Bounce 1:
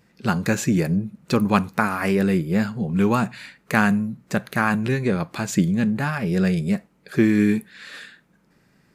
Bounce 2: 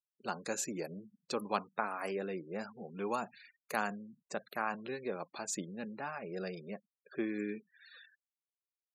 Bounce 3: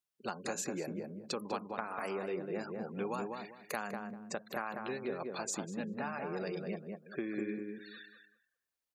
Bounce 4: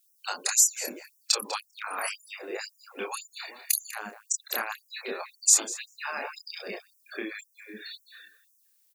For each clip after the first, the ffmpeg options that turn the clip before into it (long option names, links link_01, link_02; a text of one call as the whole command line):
ffmpeg -i in.wav -af "afftfilt=real='re*gte(hypot(re,im),0.02)':imag='im*gte(hypot(re,im),0.02)':win_size=1024:overlap=0.75,highpass=620,equalizer=frequency=1900:width=0.69:gain=-13,volume=-4.5dB" out.wav
ffmpeg -i in.wav -filter_complex "[0:a]acompressor=threshold=-39dB:ratio=5,asplit=2[link_01][link_02];[link_02]adelay=197,lowpass=frequency=1300:poles=1,volume=-3dB,asplit=2[link_03][link_04];[link_04]adelay=197,lowpass=frequency=1300:poles=1,volume=0.27,asplit=2[link_05][link_06];[link_06]adelay=197,lowpass=frequency=1300:poles=1,volume=0.27,asplit=2[link_07][link_08];[link_08]adelay=197,lowpass=frequency=1300:poles=1,volume=0.27[link_09];[link_03][link_05][link_07][link_09]amix=inputs=4:normalize=0[link_10];[link_01][link_10]amix=inputs=2:normalize=0,volume=4dB" out.wav
ffmpeg -i in.wav -filter_complex "[0:a]crystalizer=i=9:c=0,asplit=2[link_01][link_02];[link_02]adelay=28,volume=-3dB[link_03];[link_01][link_03]amix=inputs=2:normalize=0,afftfilt=real='re*gte(b*sr/1024,210*pow(5400/210,0.5+0.5*sin(2*PI*1.9*pts/sr)))':imag='im*gte(b*sr/1024,210*pow(5400/210,0.5+0.5*sin(2*PI*1.9*pts/sr)))':win_size=1024:overlap=0.75" out.wav